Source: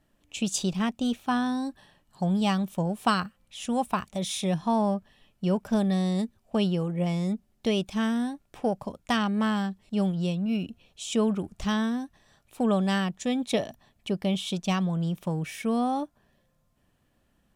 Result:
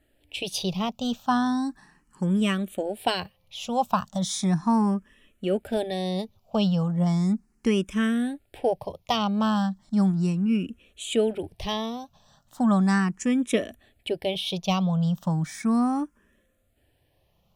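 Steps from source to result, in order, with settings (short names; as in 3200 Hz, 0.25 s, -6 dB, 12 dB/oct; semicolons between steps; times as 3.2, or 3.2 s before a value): endless phaser +0.36 Hz; gain +5 dB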